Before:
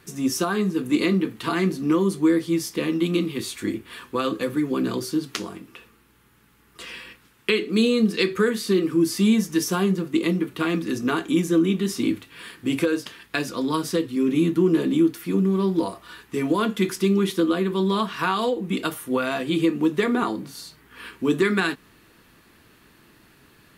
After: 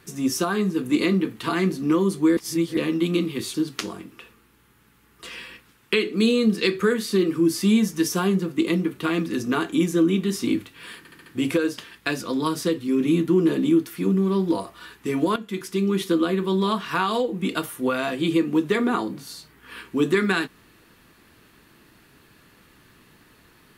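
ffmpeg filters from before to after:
ffmpeg -i in.wav -filter_complex "[0:a]asplit=9[link_01][link_02][link_03][link_04][link_05][link_06][link_07][link_08][link_09];[link_01]atrim=end=2.372[link_10];[link_02]atrim=start=2.368:end=2.772,asetpts=PTS-STARTPTS,areverse[link_11];[link_03]atrim=start=2.768:end=3.542[link_12];[link_04]atrim=start=5.098:end=12.612[link_13];[link_05]atrim=start=12.538:end=12.612[link_14];[link_06]atrim=start=12.538:end=12.612[link_15];[link_07]atrim=start=12.538:end=12.612[link_16];[link_08]atrim=start=12.538:end=16.64,asetpts=PTS-STARTPTS,afade=type=out:start_time=4.098:duration=0.004:curve=hsin:silence=0.223872[link_17];[link_09]atrim=start=16.64,asetpts=PTS-STARTPTS,afade=type=in:duration=0.72:silence=0.223872[link_18];[link_10][link_11]acrossfade=duration=0.004:curve1=hsin:curve2=hsin[link_19];[link_19][link_12]acrossfade=duration=0.004:curve1=hsin:curve2=hsin[link_20];[link_20][link_13]acrossfade=duration=0.004:curve1=hsin:curve2=hsin[link_21];[link_21][link_14]acrossfade=duration=0.004:curve1=hsin:curve2=hsin[link_22];[link_22][link_15]acrossfade=duration=0.004:curve1=hsin:curve2=hsin[link_23];[link_23][link_16]acrossfade=duration=0.004:curve1=hsin:curve2=hsin[link_24];[link_17][link_18]concat=n=2:v=0:a=1[link_25];[link_24][link_25]acrossfade=duration=0.004:curve1=hsin:curve2=hsin" out.wav

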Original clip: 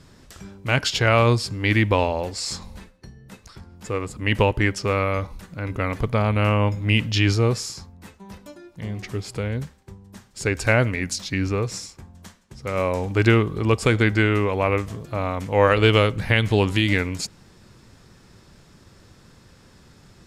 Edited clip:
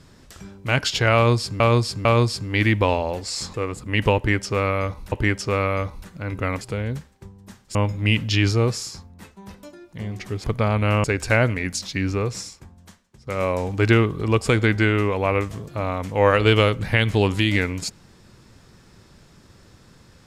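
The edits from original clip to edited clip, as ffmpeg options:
ffmpeg -i in.wav -filter_complex "[0:a]asplit=10[link_01][link_02][link_03][link_04][link_05][link_06][link_07][link_08][link_09][link_10];[link_01]atrim=end=1.602[link_11];[link_02]atrim=start=1.148:end=1.602[link_12];[link_03]atrim=start=1.148:end=2.642[link_13];[link_04]atrim=start=3.868:end=5.452[link_14];[link_05]atrim=start=4.488:end=5.982[link_15];[link_06]atrim=start=9.268:end=10.412[link_16];[link_07]atrim=start=6.578:end=9.272[link_17];[link_08]atrim=start=5.978:end=6.582[link_18];[link_09]atrim=start=10.408:end=12.64,asetpts=PTS-STARTPTS,afade=type=out:start_time=1.362:duration=0.87:silence=0.334965[link_19];[link_10]atrim=start=12.64,asetpts=PTS-STARTPTS,afade=type=in:duration=0.004:curve=hsin:silence=0.334965[link_20];[link_11][link_12]acrossfade=duration=0.004:curve1=hsin:curve2=hsin[link_21];[link_21][link_13]acrossfade=duration=0.004:curve1=hsin:curve2=hsin[link_22];[link_22][link_14]acrossfade=duration=0.004:curve1=hsin:curve2=hsin[link_23];[link_23][link_15]acrossfade=duration=0.004:curve1=hsin:curve2=hsin[link_24];[link_24][link_16]acrossfade=duration=0.004:curve1=hsin:curve2=hsin[link_25];[link_25][link_17]acrossfade=duration=0.004:curve1=hsin:curve2=hsin[link_26];[link_26][link_18]acrossfade=duration=0.004:curve1=hsin:curve2=hsin[link_27];[link_19][link_20]concat=n=2:v=0:a=1[link_28];[link_27][link_28]acrossfade=duration=0.004:curve1=hsin:curve2=hsin" out.wav

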